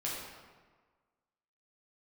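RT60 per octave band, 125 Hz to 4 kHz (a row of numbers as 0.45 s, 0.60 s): 1.4 s, 1.4 s, 1.4 s, 1.5 s, 1.2 s, 0.95 s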